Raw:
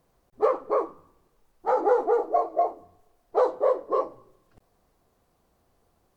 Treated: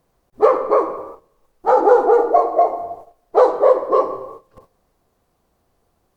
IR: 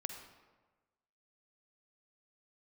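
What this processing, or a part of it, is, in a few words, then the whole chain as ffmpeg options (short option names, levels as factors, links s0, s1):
keyed gated reverb: -filter_complex "[0:a]asettb=1/sr,asplit=3[s0][s1][s2];[s0]atrim=end=1.674[s3];[s1]atrim=start=1.67:end=2.13,asetpts=PTS-STARTPTS,afade=t=in:d=0.004:c=qsin,afade=t=out:st=0.456:d=0.004:c=qsin,bandreject=f=2000:w=6[s4];[s2]atrim=start=2.126[s5];[s3][s4]acrossfade=d=0.004:c1=hsin:c2=qsin[s6];[s6][s5]acrossfade=d=0.004:c1=qsin:c2=hsin,asplit=3[s7][s8][s9];[1:a]atrim=start_sample=2205[s10];[s8][s10]afir=irnorm=-1:irlink=0[s11];[s9]apad=whole_len=271967[s12];[s11][s12]sidechaingate=range=0.0891:threshold=0.00112:ratio=16:detection=peak,volume=2.11[s13];[s7][s13]amix=inputs=2:normalize=0,volume=1.12"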